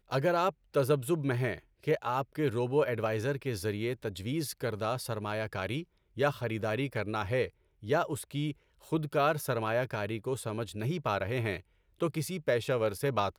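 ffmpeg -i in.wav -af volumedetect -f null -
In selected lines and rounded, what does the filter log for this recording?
mean_volume: -32.0 dB
max_volume: -14.6 dB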